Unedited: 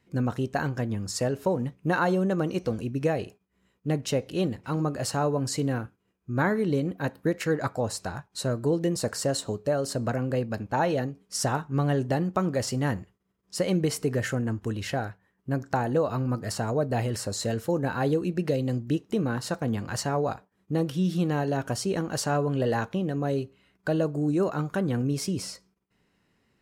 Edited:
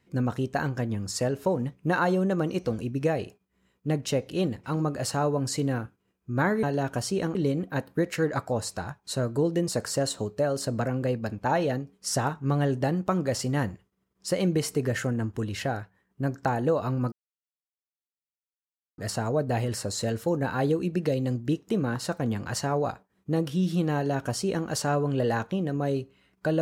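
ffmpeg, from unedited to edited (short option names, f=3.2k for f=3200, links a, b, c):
-filter_complex "[0:a]asplit=4[a][b][c][d];[a]atrim=end=6.632[e];[b]atrim=start=21.368:end=22.092[f];[c]atrim=start=6.628:end=16.4,asetpts=PTS-STARTPTS,afade=t=out:st=9.768:d=0.004:c=hsin,apad=pad_dur=1.86[g];[d]atrim=start=16.4,asetpts=PTS-STARTPTS,afade=t=in:d=0.004:c=hsin[h];[e][f]acrossfade=d=0.004:c1=hsin:c2=hsin[i];[g][h]concat=n=2:v=0:a=1[j];[i][j]acrossfade=d=0.004:c1=hsin:c2=hsin"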